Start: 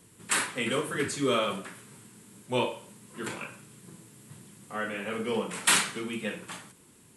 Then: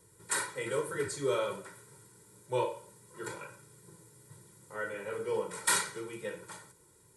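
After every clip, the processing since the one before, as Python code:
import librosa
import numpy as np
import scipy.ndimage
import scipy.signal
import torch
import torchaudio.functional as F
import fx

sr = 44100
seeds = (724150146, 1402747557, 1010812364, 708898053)

y = fx.peak_eq(x, sr, hz=2800.0, db=-13.0, octaves=0.49)
y = y + 0.9 * np.pad(y, (int(2.1 * sr / 1000.0), 0))[:len(y)]
y = y * librosa.db_to_amplitude(-6.5)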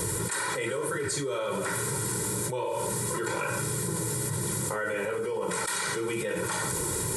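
y = fx.env_flatten(x, sr, amount_pct=100)
y = y * librosa.db_to_amplitude(-5.5)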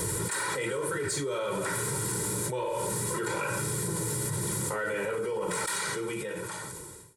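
y = fx.fade_out_tail(x, sr, length_s=1.47)
y = 10.0 ** (-21.0 / 20.0) * np.tanh(y / 10.0 ** (-21.0 / 20.0))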